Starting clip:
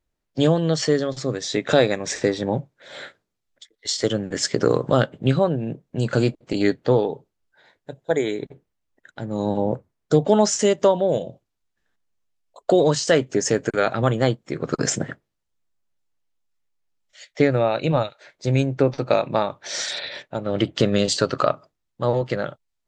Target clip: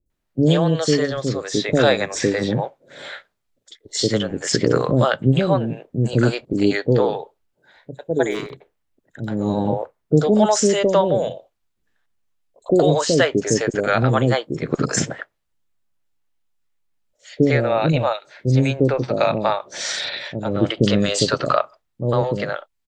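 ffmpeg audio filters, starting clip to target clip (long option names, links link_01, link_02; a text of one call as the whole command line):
ffmpeg -i in.wav -filter_complex "[0:a]aeval=exprs='0.668*(cos(1*acos(clip(val(0)/0.668,-1,1)))-cos(1*PI/2))+0.00668*(cos(2*acos(clip(val(0)/0.668,-1,1)))-cos(2*PI/2))':channel_layout=same,asettb=1/sr,asplit=3[link_01][link_02][link_03];[link_01]atrim=end=8.244[link_04];[link_02]atrim=start=8.24:end=9.29,asetpts=PTS-STARTPTS,afade=type=in:duration=0.004:curve=qsin,afade=type=out:start_time=1.046:duration=0.004:curve=qsin,volume=22dB,asoftclip=hard,volume=-22dB[link_05];[link_03]atrim=start=9.286[link_06];[link_04][link_05]acrossfade=duration=0.004:curve1=hsin:curve2=qsin[link_07];[link_07][link_06]acrossfade=duration=0.004:curve1=qsin:curve2=hsin,acrossover=split=500|5800[link_08][link_09][link_10];[link_10]adelay=60[link_11];[link_09]adelay=100[link_12];[link_08][link_12][link_11]amix=inputs=3:normalize=0,volume=4dB" out.wav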